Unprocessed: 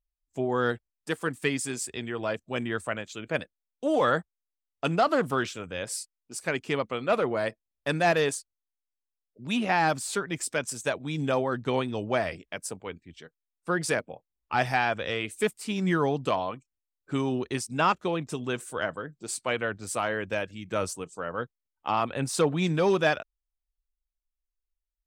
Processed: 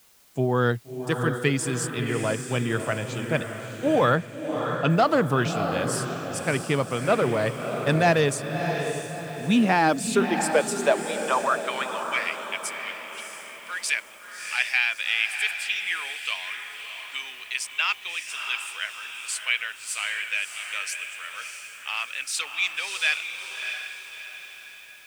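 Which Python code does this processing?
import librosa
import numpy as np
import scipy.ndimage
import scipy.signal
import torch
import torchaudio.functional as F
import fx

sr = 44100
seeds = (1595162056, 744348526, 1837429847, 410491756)

p1 = fx.filter_sweep_highpass(x, sr, from_hz=120.0, to_hz=2400.0, start_s=9.14, end_s=12.27, q=2.7)
p2 = fx.quant_dither(p1, sr, seeds[0], bits=8, dither='triangular')
p3 = p1 + (p2 * 10.0 ** (-9.5 / 20.0))
p4 = fx.lowpass(p3, sr, hz=4400.0, slope=12, at=(4.15, 4.9))
y = fx.echo_diffused(p4, sr, ms=642, feedback_pct=45, wet_db=-6.5)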